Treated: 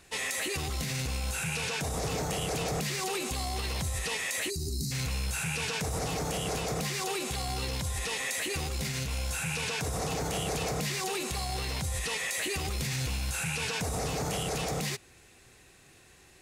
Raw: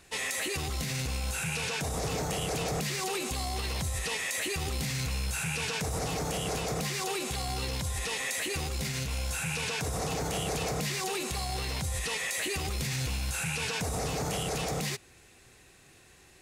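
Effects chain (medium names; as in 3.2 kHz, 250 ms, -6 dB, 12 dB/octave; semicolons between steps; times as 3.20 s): time-frequency box 4.50–4.92 s, 420–3800 Hz -27 dB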